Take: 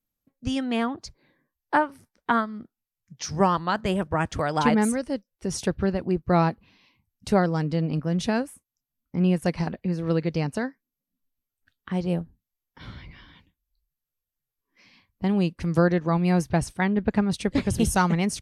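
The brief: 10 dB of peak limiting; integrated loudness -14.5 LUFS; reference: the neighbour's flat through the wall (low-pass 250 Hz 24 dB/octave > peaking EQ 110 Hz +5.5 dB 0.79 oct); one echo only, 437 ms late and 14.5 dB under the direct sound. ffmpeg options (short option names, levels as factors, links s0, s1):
-af "alimiter=limit=0.133:level=0:latency=1,lowpass=f=250:w=0.5412,lowpass=f=250:w=1.3066,equalizer=f=110:t=o:w=0.79:g=5.5,aecho=1:1:437:0.188,volume=5.96"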